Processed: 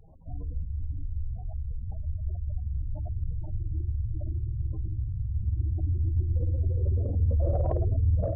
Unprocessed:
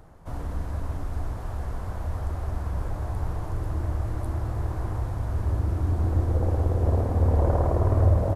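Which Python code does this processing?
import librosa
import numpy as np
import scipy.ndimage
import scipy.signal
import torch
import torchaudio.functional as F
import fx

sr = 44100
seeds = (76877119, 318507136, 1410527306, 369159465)

p1 = fx.spec_gate(x, sr, threshold_db=-15, keep='strong')
p2 = fx.peak_eq(p1, sr, hz=640.0, db=2.0, octaves=0.45)
p3 = fx.hum_notches(p2, sr, base_hz=50, count=10)
p4 = 10.0 ** (-22.0 / 20.0) * np.tanh(p3 / 10.0 ** (-22.0 / 20.0))
p5 = p3 + (p4 * librosa.db_to_amplitude(-7.0))
y = p5 * librosa.db_to_amplitude(-4.5)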